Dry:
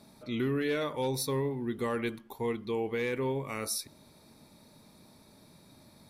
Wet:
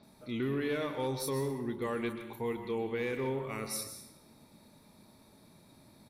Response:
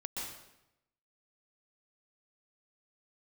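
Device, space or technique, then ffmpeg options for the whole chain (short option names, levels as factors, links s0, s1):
saturated reverb return: -filter_complex "[0:a]acrossover=split=5200[s0][s1];[s1]adelay=30[s2];[s0][s2]amix=inputs=2:normalize=0,asplit=2[s3][s4];[1:a]atrim=start_sample=2205[s5];[s4][s5]afir=irnorm=-1:irlink=0,asoftclip=type=tanh:threshold=0.0531,volume=0.668[s6];[s3][s6]amix=inputs=2:normalize=0,volume=0.531"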